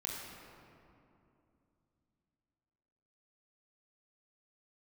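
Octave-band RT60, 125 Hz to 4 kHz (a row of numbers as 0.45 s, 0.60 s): 3.8 s, 3.7 s, 2.8 s, 2.6 s, 2.0 s, 1.4 s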